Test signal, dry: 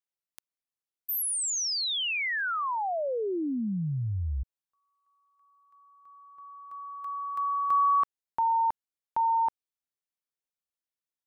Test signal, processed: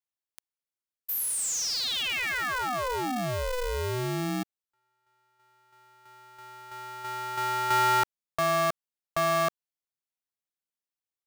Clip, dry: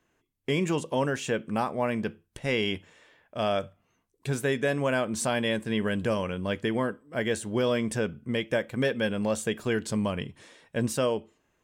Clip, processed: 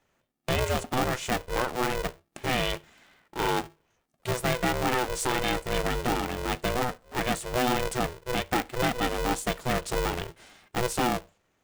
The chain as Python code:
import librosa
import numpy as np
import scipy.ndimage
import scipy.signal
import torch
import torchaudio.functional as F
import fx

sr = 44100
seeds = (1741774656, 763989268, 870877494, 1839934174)

y = x * np.sign(np.sin(2.0 * np.pi * 250.0 * np.arange(len(x)) / sr))